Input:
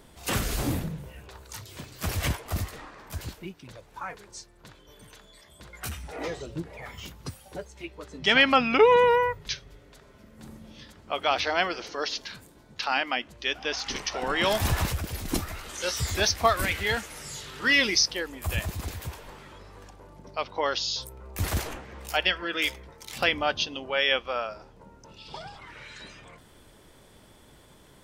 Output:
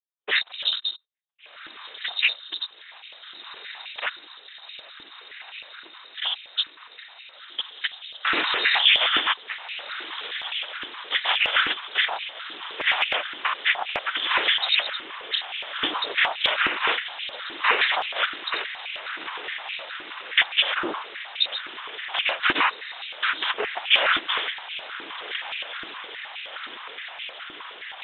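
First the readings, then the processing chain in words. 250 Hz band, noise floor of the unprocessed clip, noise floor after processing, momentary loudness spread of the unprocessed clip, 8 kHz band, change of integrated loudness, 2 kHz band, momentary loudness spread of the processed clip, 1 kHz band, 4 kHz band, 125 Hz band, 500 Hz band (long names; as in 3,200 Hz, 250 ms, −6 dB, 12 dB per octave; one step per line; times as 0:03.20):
−8.0 dB, −55 dBFS, −48 dBFS, 21 LU, below −35 dB, +2.0 dB, +5.0 dB, 20 LU, +0.5 dB, +7.5 dB, below −20 dB, −8.5 dB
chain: noise reduction from a noise print of the clip's start 20 dB
noise gate −48 dBFS, range −17 dB
parametric band 1,800 Hz +6.5 dB 2.9 octaves
leveller curve on the samples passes 5
downward compressor, threshold −14 dBFS, peak gain reduction 9.5 dB
rotating-speaker cabinet horn 7.5 Hz, later 0.8 Hz, at 0:20.19
on a send: feedback delay with all-pass diffusion 1,503 ms, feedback 74%, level −11.5 dB
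on the sum: cochlear-implant simulation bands 4
voice inversion scrambler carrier 3,900 Hz
high-pass on a step sequencer 9.6 Hz 320–2,500 Hz
level −7 dB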